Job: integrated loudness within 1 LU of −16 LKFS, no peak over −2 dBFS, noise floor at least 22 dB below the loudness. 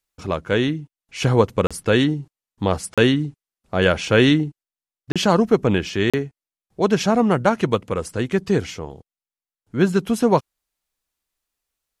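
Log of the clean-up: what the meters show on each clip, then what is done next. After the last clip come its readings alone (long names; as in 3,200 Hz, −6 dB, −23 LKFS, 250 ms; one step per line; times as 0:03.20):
number of dropouts 4; longest dropout 36 ms; integrated loudness −20.0 LKFS; sample peak −2.0 dBFS; target loudness −16.0 LKFS
→ repair the gap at 0:01.67/0:02.94/0:05.12/0:06.10, 36 ms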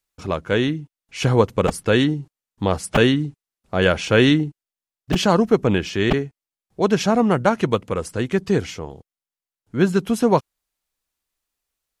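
number of dropouts 0; integrated loudness −20.0 LKFS; sample peak −2.0 dBFS; target loudness −16.0 LKFS
→ level +4 dB
brickwall limiter −2 dBFS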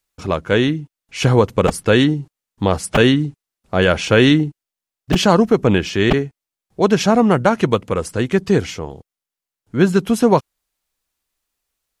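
integrated loudness −16.5 LKFS; sample peak −2.0 dBFS; background noise floor −87 dBFS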